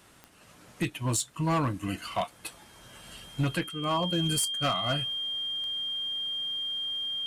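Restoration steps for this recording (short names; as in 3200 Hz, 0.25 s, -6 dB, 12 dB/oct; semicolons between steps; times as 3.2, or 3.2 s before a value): clip repair -21 dBFS; de-click; notch 3200 Hz, Q 30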